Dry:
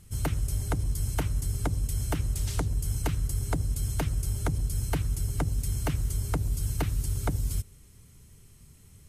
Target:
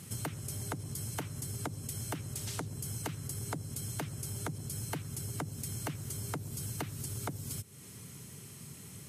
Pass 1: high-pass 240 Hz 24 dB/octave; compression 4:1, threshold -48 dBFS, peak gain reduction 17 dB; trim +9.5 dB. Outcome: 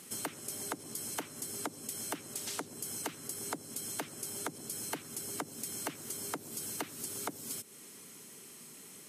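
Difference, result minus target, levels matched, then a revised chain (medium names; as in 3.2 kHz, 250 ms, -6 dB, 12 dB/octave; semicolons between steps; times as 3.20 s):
125 Hz band -16.5 dB
high-pass 120 Hz 24 dB/octave; compression 4:1, threshold -48 dBFS, peak gain reduction 18 dB; trim +9.5 dB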